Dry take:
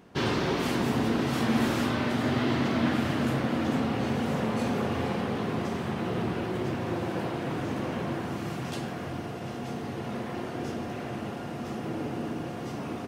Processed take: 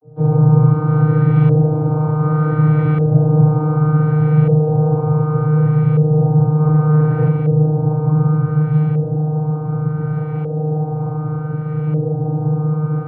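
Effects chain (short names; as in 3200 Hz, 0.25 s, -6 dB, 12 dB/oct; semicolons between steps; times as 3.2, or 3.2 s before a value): tracing distortion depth 0.082 ms; split-band echo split 350 Hz, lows 0.181 s, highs 0.704 s, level -6 dB; vocoder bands 32, saw 153 Hz; reverb RT60 0.35 s, pre-delay 3 ms, DRR -10 dB; 6.6–7.29 sample leveller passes 1; LFO low-pass saw up 0.67 Hz 540–2400 Hz; gain -9.5 dB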